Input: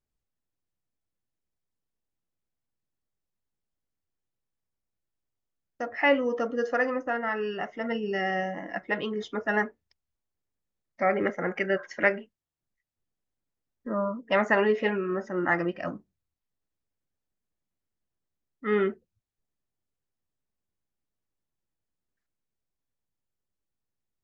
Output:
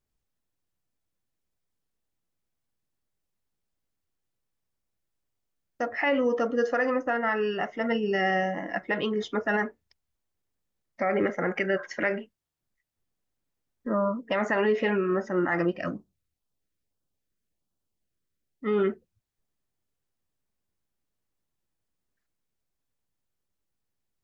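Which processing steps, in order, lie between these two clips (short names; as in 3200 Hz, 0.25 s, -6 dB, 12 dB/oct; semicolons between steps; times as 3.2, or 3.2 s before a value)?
limiter -19.5 dBFS, peak gain reduction 9 dB; 15.65–18.83 LFO notch sine 3.2 Hz -> 0.65 Hz 770–2200 Hz; gain +3.5 dB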